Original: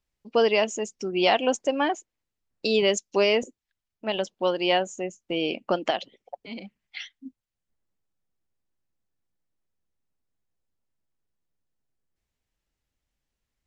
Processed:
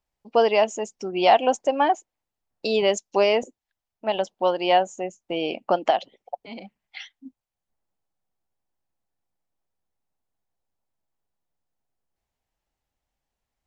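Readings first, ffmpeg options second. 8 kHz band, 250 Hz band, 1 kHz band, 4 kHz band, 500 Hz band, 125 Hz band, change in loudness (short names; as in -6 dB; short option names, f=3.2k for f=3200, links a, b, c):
-2.0 dB, -1.0 dB, +7.0 dB, -1.5 dB, +2.5 dB, -1.5 dB, +2.5 dB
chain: -af "equalizer=f=780:t=o:w=0.96:g=10,volume=-2dB"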